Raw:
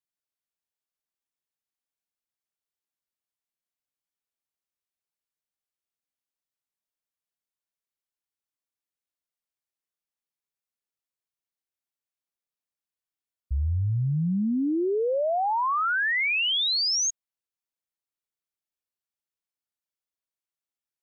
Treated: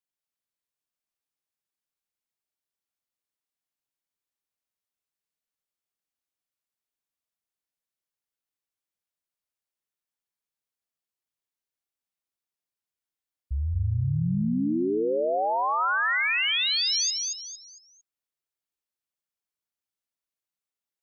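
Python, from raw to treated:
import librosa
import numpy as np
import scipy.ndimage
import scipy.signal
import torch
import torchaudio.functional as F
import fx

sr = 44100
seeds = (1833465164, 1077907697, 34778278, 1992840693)

y = fx.peak_eq(x, sr, hz=760.0, db=7.5, octaves=0.73, at=(15.8, 16.96))
y = fx.echo_feedback(y, sr, ms=227, feedback_pct=34, wet_db=-3.5)
y = F.gain(torch.from_numpy(y), -2.0).numpy()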